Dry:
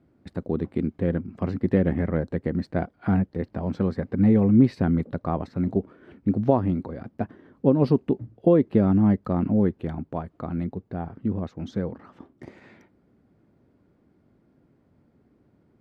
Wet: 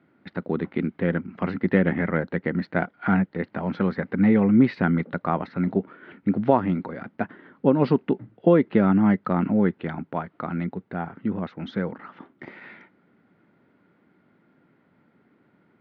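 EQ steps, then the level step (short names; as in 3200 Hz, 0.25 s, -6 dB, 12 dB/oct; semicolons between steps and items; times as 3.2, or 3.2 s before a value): speaker cabinet 160–3500 Hz, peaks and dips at 180 Hz +4 dB, 900 Hz +4 dB, 1400 Hz +8 dB, 2000 Hz +6 dB; high shelf 2100 Hz +11.5 dB; 0.0 dB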